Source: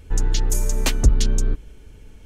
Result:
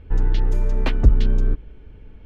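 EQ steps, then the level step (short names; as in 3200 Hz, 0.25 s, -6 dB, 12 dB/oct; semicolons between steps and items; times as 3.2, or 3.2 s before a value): air absorption 390 m; +1.5 dB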